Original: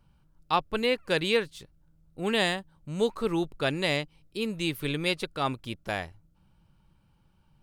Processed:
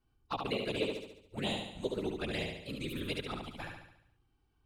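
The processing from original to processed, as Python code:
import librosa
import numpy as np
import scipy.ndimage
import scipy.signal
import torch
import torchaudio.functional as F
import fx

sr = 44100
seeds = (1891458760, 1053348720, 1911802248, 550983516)

p1 = fx.whisperise(x, sr, seeds[0])
p2 = fx.stretch_vocoder(p1, sr, factor=0.61)
p3 = fx.env_flanger(p2, sr, rest_ms=2.7, full_db=-24.5)
p4 = p3 + fx.echo_feedback(p3, sr, ms=71, feedback_pct=52, wet_db=-4, dry=0)
y = p4 * 10.0 ** (-6.0 / 20.0)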